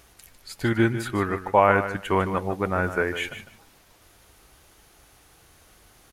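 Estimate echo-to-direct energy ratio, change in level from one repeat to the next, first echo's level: -11.0 dB, -15.5 dB, -11.0 dB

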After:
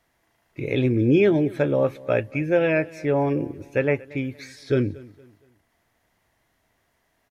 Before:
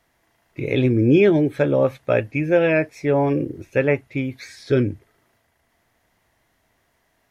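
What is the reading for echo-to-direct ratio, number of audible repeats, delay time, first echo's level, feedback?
-21.0 dB, 2, 0.233 s, -21.5 dB, 36%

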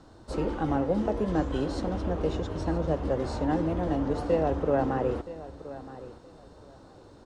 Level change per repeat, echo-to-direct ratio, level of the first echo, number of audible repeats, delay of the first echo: -13.5 dB, -15.5 dB, -15.5 dB, 2, 0.972 s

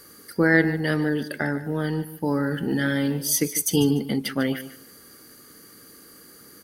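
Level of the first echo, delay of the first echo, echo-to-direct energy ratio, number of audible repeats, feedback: -14.0 dB, 0.148 s, -14.0 dB, 2, 21%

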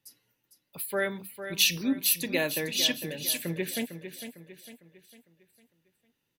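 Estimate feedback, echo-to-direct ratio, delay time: 43%, -9.0 dB, 0.453 s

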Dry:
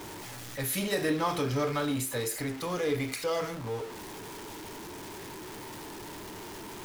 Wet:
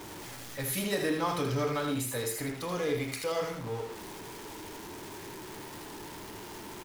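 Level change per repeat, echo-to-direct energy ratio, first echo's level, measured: no steady repeat, -6.5 dB, -6.5 dB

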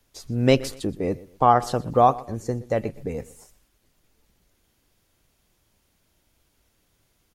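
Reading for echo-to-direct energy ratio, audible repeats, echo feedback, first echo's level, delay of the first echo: -19.5 dB, 2, 31%, -20.0 dB, 0.122 s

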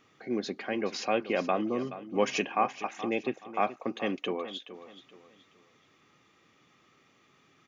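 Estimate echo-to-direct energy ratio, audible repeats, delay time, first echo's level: -13.5 dB, 3, 0.425 s, -14.0 dB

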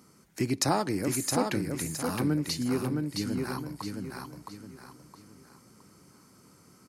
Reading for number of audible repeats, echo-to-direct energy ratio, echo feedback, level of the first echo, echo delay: 4, -3.5 dB, 35%, -4.0 dB, 0.666 s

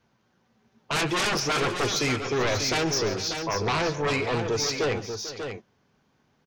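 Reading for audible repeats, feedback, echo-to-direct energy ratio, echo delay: 3, no steady repeat, -6.5 dB, 0.138 s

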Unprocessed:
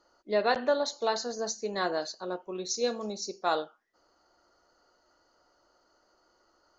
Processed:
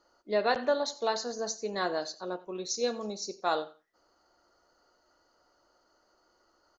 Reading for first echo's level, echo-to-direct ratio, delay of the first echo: -19.0 dB, -19.0 dB, 89 ms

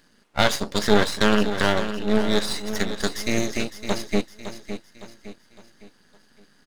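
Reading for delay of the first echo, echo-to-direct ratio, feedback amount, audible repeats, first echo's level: 0.56 s, -9.5 dB, 42%, 4, -10.5 dB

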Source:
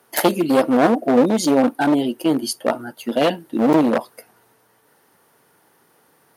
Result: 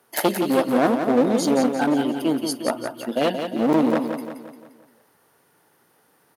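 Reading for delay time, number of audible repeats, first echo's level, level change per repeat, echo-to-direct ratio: 0.174 s, 5, -7.0 dB, -6.5 dB, -6.0 dB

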